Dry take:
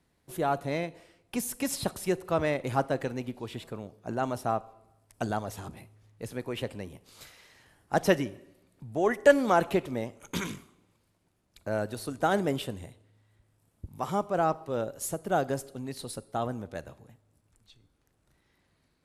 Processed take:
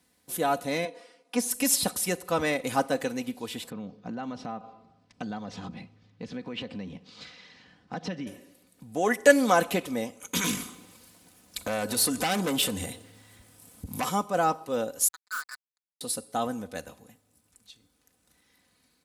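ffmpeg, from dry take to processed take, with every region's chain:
-filter_complex "[0:a]asettb=1/sr,asplit=3[s0][s1][s2];[s0]atrim=end=0.854[s3];[s1]atrim=start=0.85:end=1.51,asetpts=PTS-STARTPTS,afade=t=in:d=0.004:c=qsin,afade=t=out:st=0.656:d=0.004:c=qsin,highpass=300,lowpass=6400,equalizer=f=4600:w=0.71:g=-5,aecho=1:1:4.2:0.84,atrim=end_sample=29106[s4];[s2]atrim=start=1.506[s5];[s3][s4]acrossfade=d=0.004:c1=hsin:c2=qsin[s6];[s6][s5]acrossfade=d=0.004:c1=qsin:c2=hsin,asettb=1/sr,asplit=3[s7][s8][s9];[s7]atrim=end=3.704[s10];[s8]atrim=start=3.7:end=8.27,asetpts=PTS-STARTPTS,afade=t=in:d=0.004:c=qsin,afade=t=out:st=4.566:d=0.004:c=qsin,lowpass=f=4700:w=0.5412,lowpass=f=4700:w=1.3066,equalizer=f=170:t=o:w=1.1:g=11,acompressor=threshold=0.02:ratio=4:attack=3.2:release=140:knee=1:detection=peak[s11];[s9]atrim=start=8.266[s12];[s10][s11]acrossfade=d=0.004:c1=hsin:c2=qsin[s13];[s13][s12]acrossfade=d=0.004:c1=qsin:c2=hsin,asettb=1/sr,asplit=3[s14][s15][s16];[s14]atrim=end=10.444[s17];[s15]atrim=start=10.44:end=14.09,asetpts=PTS-STARTPTS,afade=t=in:d=0.004:c=qsin,afade=t=out:st=3.646:d=0.004:c=qsin,acompressor=threshold=0.00708:ratio=2:attack=3.2:release=140:knee=1:detection=peak,aeval=exprs='0.0562*sin(PI/2*2.82*val(0)/0.0562)':c=same[s18];[s16]atrim=start=14.086[s19];[s17][s18]acrossfade=d=0.004:c1=hsin:c2=qsin[s20];[s20][s19]acrossfade=d=0.004:c1=qsin:c2=hsin,asettb=1/sr,asplit=3[s21][s22][s23];[s21]atrim=end=15.084[s24];[s22]atrim=start=15.08:end=16.01,asetpts=PTS-STARTPTS,afade=t=in:d=0.004:c=qsin,afade=t=out:st=0.926:d=0.004:c=qsin,asuperpass=centerf=1400:order=12:qfactor=1.9,acrusher=bits=6:mix=0:aa=0.5[s25];[s23]atrim=start=16.006[s26];[s24][s25]acrossfade=d=0.004:c1=hsin:c2=qsin[s27];[s27][s26]acrossfade=d=0.004:c1=qsin:c2=hsin,highpass=78,highshelf=f=3300:g=11.5,aecho=1:1:4:0.58"

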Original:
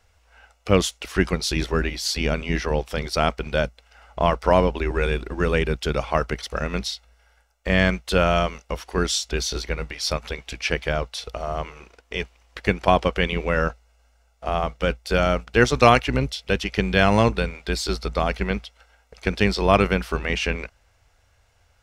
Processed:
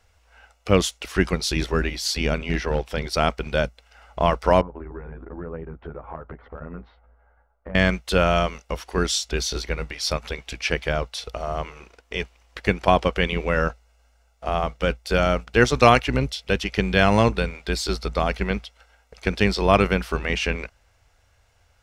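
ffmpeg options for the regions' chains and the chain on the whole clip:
-filter_complex "[0:a]asettb=1/sr,asplit=3[s0][s1][s2];[s0]atrim=end=2.384[s3];[s1]atrim=start=2.38:end=3.1,asetpts=PTS-STARTPTS,afade=t=in:d=0.004:c=qsin,afade=t=out:st=0.716:d=0.004:c=qsin,bandreject=f=1200:w=11,asoftclip=type=hard:threshold=0.188,adynamicequalizer=threshold=0.00501:dfrequency=4700:dqfactor=0.7:tfrequency=4700:tqfactor=0.7:attack=5:release=100:ratio=0.375:range=3:mode=cutabove:tftype=highshelf[s4];[s2]atrim=start=3.096[s5];[s3][s4]acrossfade=d=0.004:c1=hsin:c2=qsin[s6];[s6][s5]acrossfade=d=0.004:c1=qsin:c2=hsin,asettb=1/sr,asplit=3[s7][s8][s9];[s7]atrim=end=4.614[s10];[s8]atrim=start=4.61:end=7.75,asetpts=PTS-STARTPTS,afade=t=in:d=0.004:c=qsin,afade=t=out:st=3.136:d=0.004:c=qsin,lowpass=f=1400:w=0.5412,lowpass=f=1400:w=1.3066,acompressor=threshold=0.0178:ratio=5:attack=3.2:release=140:knee=1:detection=peak,asplit=2[s11][s12];[s12]adelay=12,volume=0.794[s13];[s11][s13]amix=inputs=2:normalize=0,atrim=end_sample=138474[s14];[s9]atrim=start=7.746[s15];[s10][s14]acrossfade=d=0.004:c1=hsin:c2=qsin[s16];[s16][s15]acrossfade=d=0.004:c1=qsin:c2=hsin"

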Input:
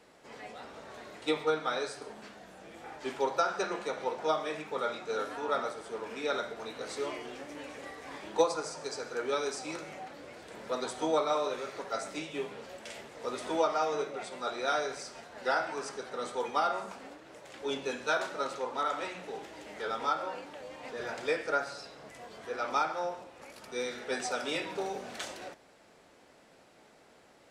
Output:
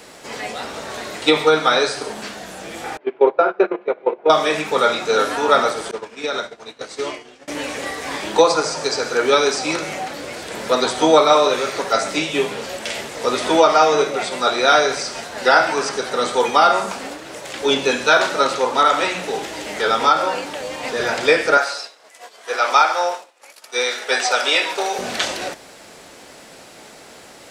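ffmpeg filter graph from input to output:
-filter_complex "[0:a]asettb=1/sr,asplit=3[s0][s1][s2];[s0]atrim=end=2.974[s3];[s1]atrim=start=2.97:end=4.3,asetpts=PTS-STARTPTS,afade=t=in:d=0.004:c=qsin,afade=t=out:st=1.326:d=0.004:c=qsin,agate=range=0.126:threshold=0.02:ratio=16:release=100:detection=peak,highpass=260,equalizer=f=260:t=q:w=4:g=-4,equalizer=f=370:t=q:w=4:g=7,equalizer=f=900:t=q:w=4:g=-6,equalizer=f=1300:t=q:w=4:g=-6,equalizer=f=1800:t=q:w=4:g=-9,lowpass=f=2100:w=0.5412,lowpass=f=2100:w=1.3066[s4];[s2]atrim=start=4.296[s5];[s3][s4]acrossfade=d=0.004:c1=hsin:c2=qsin[s6];[s6][s5]acrossfade=d=0.004:c1=qsin:c2=hsin,asettb=1/sr,asplit=3[s7][s8][s9];[s7]atrim=end=5.914[s10];[s8]atrim=start=5.91:end=7.48,asetpts=PTS-STARTPTS,afade=t=in:d=0.004:c=qsin,afade=t=out:st=1.566:d=0.004:c=qsin,agate=range=0.0224:threshold=0.0251:ratio=3:release=100:detection=peak,acompressor=threshold=0.0158:ratio=6:attack=3.2:release=140:knee=1:detection=peak,lowpass=8000[s11];[s9]atrim=start=7.476[s12];[s10][s11]acrossfade=d=0.004:c1=hsin:c2=qsin[s13];[s13][s12]acrossfade=d=0.004:c1=qsin:c2=hsin,asettb=1/sr,asplit=3[s14][s15][s16];[s14]atrim=end=21.574[s17];[s15]atrim=start=21.57:end=24.99,asetpts=PTS-STARTPTS,afade=t=in:d=0.004:c=qsin,afade=t=out:st=3.416:d=0.004:c=qsin,highpass=550,agate=range=0.0224:threshold=0.00708:ratio=3:release=100:detection=peak[s18];[s16]atrim=start=24.986[s19];[s17][s18]acrossfade=d=0.004:c1=hsin:c2=qsin[s20];[s20][s19]acrossfade=d=0.004:c1=qsin:c2=hsin,acrossover=split=5100[s21][s22];[s22]acompressor=threshold=0.00112:ratio=4:attack=1:release=60[s23];[s21][s23]amix=inputs=2:normalize=0,highshelf=f=3300:g=9.5,alimiter=level_in=7.08:limit=0.891:release=50:level=0:latency=1,volume=0.891"

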